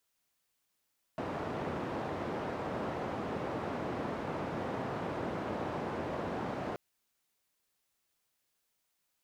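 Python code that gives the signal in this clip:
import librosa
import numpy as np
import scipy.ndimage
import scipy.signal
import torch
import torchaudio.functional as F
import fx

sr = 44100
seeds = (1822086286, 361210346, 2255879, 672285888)

y = fx.band_noise(sr, seeds[0], length_s=5.58, low_hz=100.0, high_hz=720.0, level_db=-37.0)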